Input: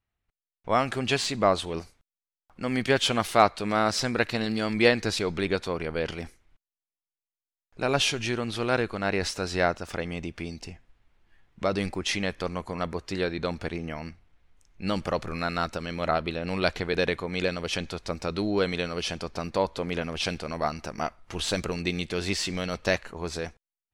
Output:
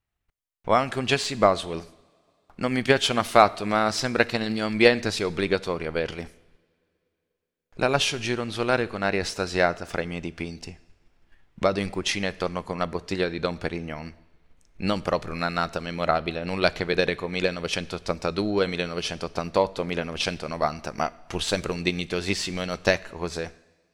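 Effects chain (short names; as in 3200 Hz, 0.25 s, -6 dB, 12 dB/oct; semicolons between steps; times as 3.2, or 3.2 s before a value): two-slope reverb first 0.9 s, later 3.1 s, from -19 dB, DRR 16 dB; transient shaper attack +6 dB, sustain 0 dB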